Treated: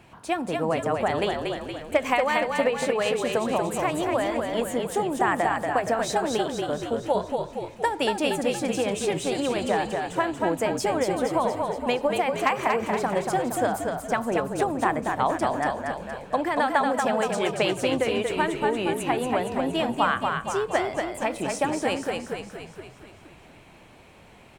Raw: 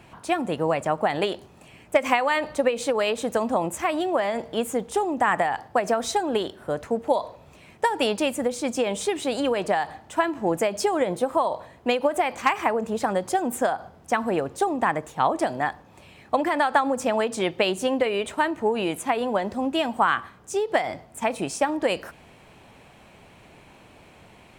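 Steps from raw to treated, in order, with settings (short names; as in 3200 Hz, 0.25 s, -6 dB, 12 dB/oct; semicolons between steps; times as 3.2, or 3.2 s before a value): frequency-shifting echo 0.234 s, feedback 58%, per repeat -36 Hz, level -4 dB; gain -2.5 dB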